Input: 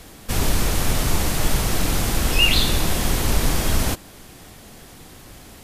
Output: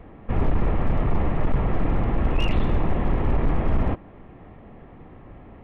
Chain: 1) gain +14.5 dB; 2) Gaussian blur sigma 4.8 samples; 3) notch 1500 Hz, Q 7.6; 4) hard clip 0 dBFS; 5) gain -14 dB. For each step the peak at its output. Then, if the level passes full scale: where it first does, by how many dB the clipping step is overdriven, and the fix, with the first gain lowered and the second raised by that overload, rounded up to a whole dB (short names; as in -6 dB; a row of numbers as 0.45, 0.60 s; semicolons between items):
+10.5, +8.5, +8.5, 0.0, -14.0 dBFS; step 1, 8.5 dB; step 1 +5.5 dB, step 5 -5 dB